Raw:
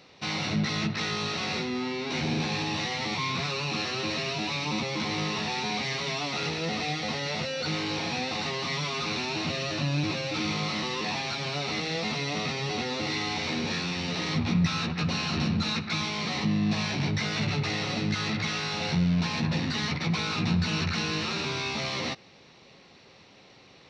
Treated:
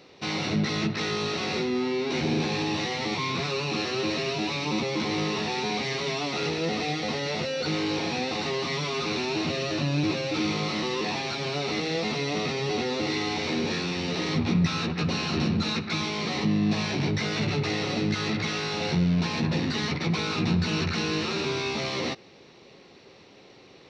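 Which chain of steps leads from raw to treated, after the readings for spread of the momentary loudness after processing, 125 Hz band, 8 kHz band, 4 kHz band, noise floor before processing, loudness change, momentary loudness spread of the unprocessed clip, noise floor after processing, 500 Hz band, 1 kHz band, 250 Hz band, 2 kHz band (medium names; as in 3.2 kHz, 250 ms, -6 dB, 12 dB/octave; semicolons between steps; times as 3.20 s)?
3 LU, +1.0 dB, 0.0 dB, 0.0 dB, -54 dBFS, +1.5 dB, 3 LU, -52 dBFS, +5.5 dB, +1.0 dB, +3.0 dB, 0.0 dB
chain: peaking EQ 380 Hz +7.5 dB 0.98 oct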